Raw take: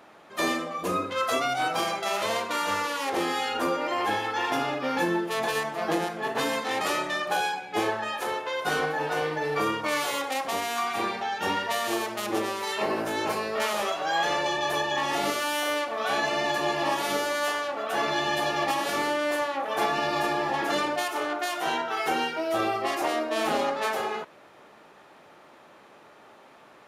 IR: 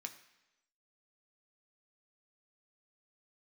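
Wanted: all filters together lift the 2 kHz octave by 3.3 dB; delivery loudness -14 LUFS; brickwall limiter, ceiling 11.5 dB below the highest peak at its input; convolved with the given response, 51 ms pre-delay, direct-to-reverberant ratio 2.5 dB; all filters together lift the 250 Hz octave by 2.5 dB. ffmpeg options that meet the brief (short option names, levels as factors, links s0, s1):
-filter_complex "[0:a]equalizer=f=250:t=o:g=3.5,equalizer=f=2000:t=o:g=4,alimiter=limit=0.075:level=0:latency=1,asplit=2[s0][s1];[1:a]atrim=start_sample=2205,adelay=51[s2];[s1][s2]afir=irnorm=-1:irlink=0,volume=1.06[s3];[s0][s3]amix=inputs=2:normalize=0,volume=5.96"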